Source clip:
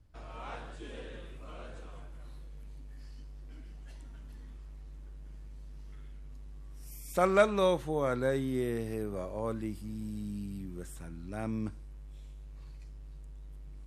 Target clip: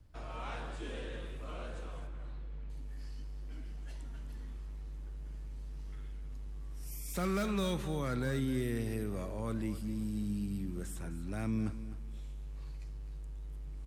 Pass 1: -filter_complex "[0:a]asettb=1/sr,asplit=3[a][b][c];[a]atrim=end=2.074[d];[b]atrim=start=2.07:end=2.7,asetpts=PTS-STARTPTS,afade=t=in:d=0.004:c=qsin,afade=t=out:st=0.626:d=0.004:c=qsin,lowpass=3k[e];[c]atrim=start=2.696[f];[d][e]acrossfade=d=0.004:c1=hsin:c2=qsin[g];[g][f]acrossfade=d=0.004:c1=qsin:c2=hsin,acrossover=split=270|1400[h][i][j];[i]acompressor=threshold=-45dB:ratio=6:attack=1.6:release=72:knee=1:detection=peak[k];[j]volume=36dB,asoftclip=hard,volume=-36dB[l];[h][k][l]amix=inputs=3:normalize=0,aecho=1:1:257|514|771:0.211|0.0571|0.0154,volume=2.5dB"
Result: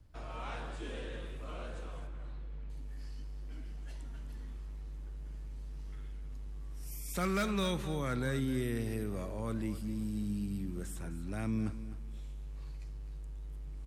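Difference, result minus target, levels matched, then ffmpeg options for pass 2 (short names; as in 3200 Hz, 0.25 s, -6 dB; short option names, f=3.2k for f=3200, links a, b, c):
overloaded stage: distortion -5 dB
-filter_complex "[0:a]asettb=1/sr,asplit=3[a][b][c];[a]atrim=end=2.074[d];[b]atrim=start=2.07:end=2.7,asetpts=PTS-STARTPTS,afade=t=in:d=0.004:c=qsin,afade=t=out:st=0.626:d=0.004:c=qsin,lowpass=3k[e];[c]atrim=start=2.696[f];[d][e]acrossfade=d=0.004:c1=hsin:c2=qsin[g];[g][f]acrossfade=d=0.004:c1=qsin:c2=hsin,acrossover=split=270|1400[h][i][j];[i]acompressor=threshold=-45dB:ratio=6:attack=1.6:release=72:knee=1:detection=peak[k];[j]volume=42.5dB,asoftclip=hard,volume=-42.5dB[l];[h][k][l]amix=inputs=3:normalize=0,aecho=1:1:257|514|771:0.211|0.0571|0.0154,volume=2.5dB"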